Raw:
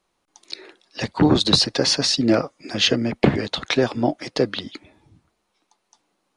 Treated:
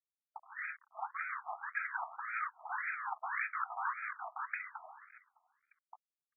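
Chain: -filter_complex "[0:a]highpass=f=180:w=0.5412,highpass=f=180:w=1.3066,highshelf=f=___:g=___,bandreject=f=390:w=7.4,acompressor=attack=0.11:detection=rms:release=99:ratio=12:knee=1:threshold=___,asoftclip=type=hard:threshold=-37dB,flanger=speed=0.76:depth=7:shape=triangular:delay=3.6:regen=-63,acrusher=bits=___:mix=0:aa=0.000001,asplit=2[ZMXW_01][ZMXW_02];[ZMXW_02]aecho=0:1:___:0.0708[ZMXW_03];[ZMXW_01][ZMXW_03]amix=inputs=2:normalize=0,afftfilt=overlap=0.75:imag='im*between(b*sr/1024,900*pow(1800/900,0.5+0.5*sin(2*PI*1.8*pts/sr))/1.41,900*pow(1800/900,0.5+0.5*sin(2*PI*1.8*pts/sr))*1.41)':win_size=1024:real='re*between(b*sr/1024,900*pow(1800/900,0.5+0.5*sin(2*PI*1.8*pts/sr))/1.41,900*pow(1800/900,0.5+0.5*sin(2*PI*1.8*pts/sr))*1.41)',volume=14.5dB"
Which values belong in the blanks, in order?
5500, -9.5, -21dB, 9, 609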